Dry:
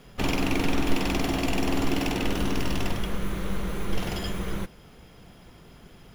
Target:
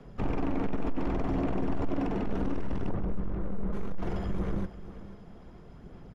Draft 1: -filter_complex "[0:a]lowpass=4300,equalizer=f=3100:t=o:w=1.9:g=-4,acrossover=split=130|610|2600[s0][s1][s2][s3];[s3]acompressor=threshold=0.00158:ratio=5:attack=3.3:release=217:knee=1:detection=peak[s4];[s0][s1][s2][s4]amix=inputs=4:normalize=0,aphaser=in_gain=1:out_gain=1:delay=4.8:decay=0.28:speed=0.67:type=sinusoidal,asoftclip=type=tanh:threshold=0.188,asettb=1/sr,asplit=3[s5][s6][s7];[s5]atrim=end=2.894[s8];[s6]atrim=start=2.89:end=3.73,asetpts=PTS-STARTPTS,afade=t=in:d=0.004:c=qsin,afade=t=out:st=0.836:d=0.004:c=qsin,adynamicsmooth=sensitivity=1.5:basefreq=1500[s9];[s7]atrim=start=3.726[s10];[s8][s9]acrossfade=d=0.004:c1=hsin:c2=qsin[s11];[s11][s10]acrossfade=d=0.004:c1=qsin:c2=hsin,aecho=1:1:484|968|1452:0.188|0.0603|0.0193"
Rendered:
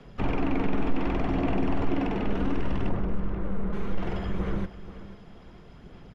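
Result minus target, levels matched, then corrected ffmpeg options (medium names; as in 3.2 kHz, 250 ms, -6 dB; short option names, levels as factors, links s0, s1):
saturation: distortion -9 dB; 4 kHz band +4.5 dB
-filter_complex "[0:a]lowpass=4300,equalizer=f=3100:t=o:w=1.9:g=-12.5,acrossover=split=130|610|2600[s0][s1][s2][s3];[s3]acompressor=threshold=0.00158:ratio=5:attack=3.3:release=217:knee=1:detection=peak[s4];[s0][s1][s2][s4]amix=inputs=4:normalize=0,aphaser=in_gain=1:out_gain=1:delay=4.8:decay=0.28:speed=0.67:type=sinusoidal,asoftclip=type=tanh:threshold=0.0708,asettb=1/sr,asplit=3[s5][s6][s7];[s5]atrim=end=2.894[s8];[s6]atrim=start=2.89:end=3.73,asetpts=PTS-STARTPTS,afade=t=in:d=0.004:c=qsin,afade=t=out:st=0.836:d=0.004:c=qsin,adynamicsmooth=sensitivity=1.5:basefreq=1500[s9];[s7]atrim=start=3.726[s10];[s8][s9]acrossfade=d=0.004:c1=hsin:c2=qsin[s11];[s11][s10]acrossfade=d=0.004:c1=qsin:c2=hsin,aecho=1:1:484|968|1452:0.188|0.0603|0.0193"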